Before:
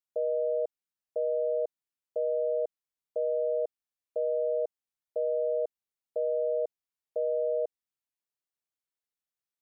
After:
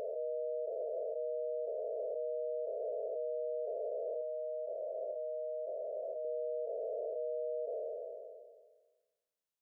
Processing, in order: spectral blur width 1140 ms; peak limiter -32.5 dBFS, peak gain reduction 5.5 dB; 4.21–6.25 s: comb of notches 450 Hz; trim +1 dB

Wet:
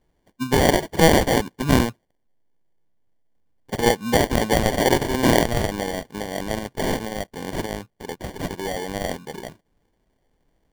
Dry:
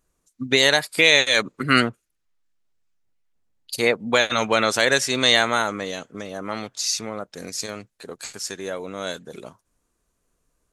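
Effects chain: in parallel at -2 dB: compression, threshold -27 dBFS, peak gain reduction 16 dB; on the sum: sample-and-hold 34×; trim -1 dB

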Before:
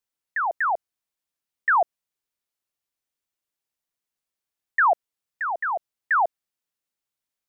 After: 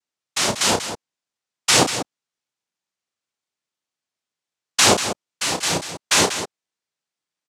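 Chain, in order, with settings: noise-vocoded speech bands 2; loudspeakers at several distances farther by 11 m -8 dB, 65 m -10 dB; trim +3.5 dB

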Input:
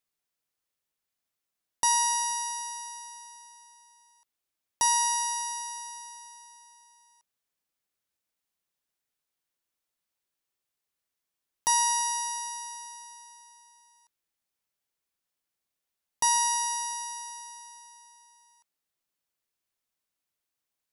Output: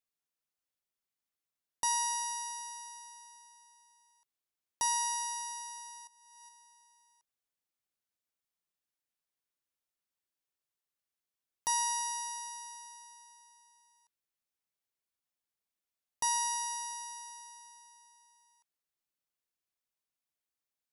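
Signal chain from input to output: 6.07–6.49 s: compressor with a negative ratio -51 dBFS, ratio -0.5; trim -7 dB

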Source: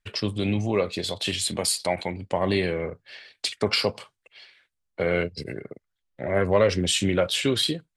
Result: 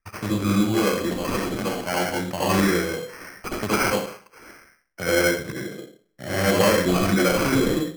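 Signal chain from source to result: steep low-pass 4 kHz 48 dB/octave; reverberation RT60 0.45 s, pre-delay 67 ms, DRR -4.5 dB; sample-and-hold 12×

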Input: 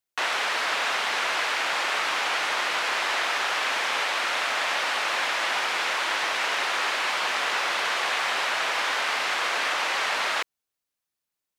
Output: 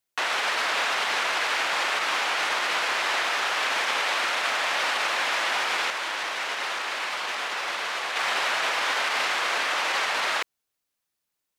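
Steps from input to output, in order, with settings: peak limiter -20 dBFS, peak gain reduction 7.5 dB; 5.90–8.16 s: flange 1.1 Hz, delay 8.6 ms, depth 1.6 ms, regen -73%; trim +3.5 dB

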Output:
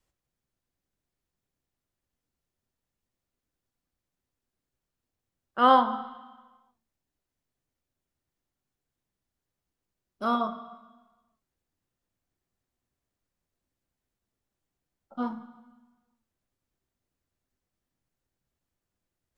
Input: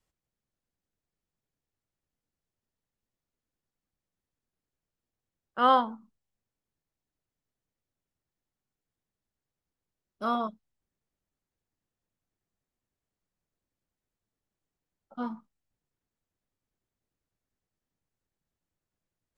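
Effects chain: on a send: low-pass 2.4 kHz 6 dB/octave + reverberation RT60 1.2 s, pre-delay 3 ms, DRR 8.5 dB; on the sum: trim +2 dB

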